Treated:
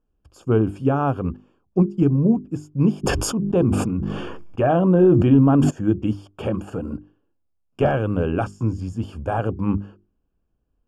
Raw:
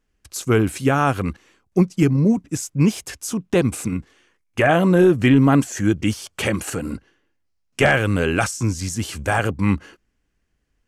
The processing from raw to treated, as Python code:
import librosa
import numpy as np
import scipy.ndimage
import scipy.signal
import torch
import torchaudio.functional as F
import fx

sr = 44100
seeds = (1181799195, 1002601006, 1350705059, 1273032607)

y = np.convolve(x, np.full(22, 1.0 / 22))[:len(x)]
y = fx.hum_notches(y, sr, base_hz=50, count=8)
y = fx.sustainer(y, sr, db_per_s=27.0, at=(3.03, 5.69), fade=0.02)